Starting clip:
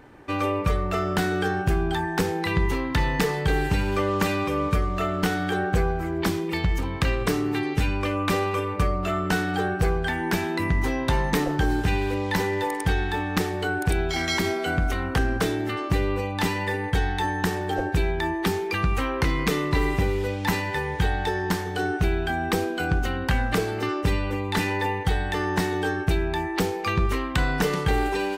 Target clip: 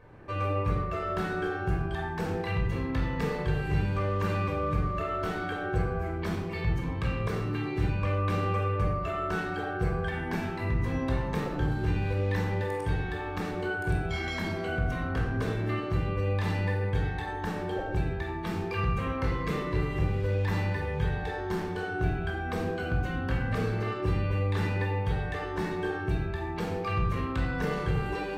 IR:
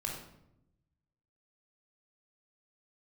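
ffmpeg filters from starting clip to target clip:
-filter_complex "[0:a]alimiter=limit=-18.5dB:level=0:latency=1,highshelf=frequency=4200:gain=-10.5[link_01];[1:a]atrim=start_sample=2205,afade=type=out:start_time=0.33:duration=0.01,atrim=end_sample=14994[link_02];[link_01][link_02]afir=irnorm=-1:irlink=0,volume=-4.5dB"

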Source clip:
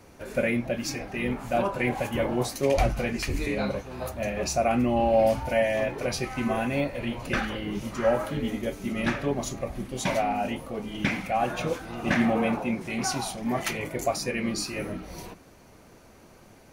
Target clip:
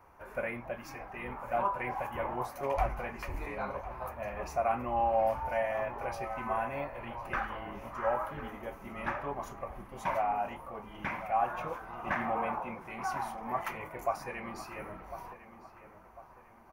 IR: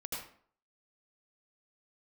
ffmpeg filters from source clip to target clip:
-filter_complex "[0:a]equalizer=frequency=125:width_type=o:width=1:gain=-5,equalizer=frequency=250:width_type=o:width=1:gain=-9,equalizer=frequency=500:width_type=o:width=1:gain=-4,equalizer=frequency=1000:width_type=o:width=1:gain=12,equalizer=frequency=4000:width_type=o:width=1:gain=-12,equalizer=frequency=8000:width_type=o:width=1:gain=-12,asplit=2[link_01][link_02];[link_02]adelay=1051,lowpass=frequency=2300:poles=1,volume=-13dB,asplit=2[link_03][link_04];[link_04]adelay=1051,lowpass=frequency=2300:poles=1,volume=0.43,asplit=2[link_05][link_06];[link_06]adelay=1051,lowpass=frequency=2300:poles=1,volume=0.43,asplit=2[link_07][link_08];[link_08]adelay=1051,lowpass=frequency=2300:poles=1,volume=0.43[link_09];[link_01][link_03][link_05][link_07][link_09]amix=inputs=5:normalize=0,volume=-7.5dB"

